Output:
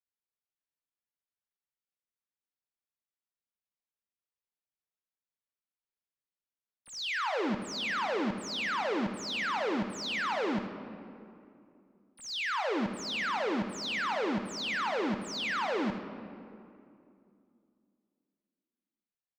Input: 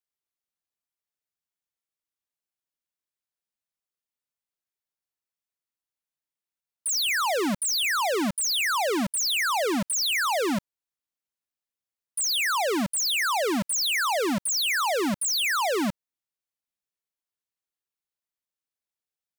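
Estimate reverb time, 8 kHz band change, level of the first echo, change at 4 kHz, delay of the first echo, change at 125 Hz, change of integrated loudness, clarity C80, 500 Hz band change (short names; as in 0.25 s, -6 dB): 2.6 s, -20.0 dB, -11.0 dB, -10.0 dB, 81 ms, -4.5 dB, -8.0 dB, 7.0 dB, -5.5 dB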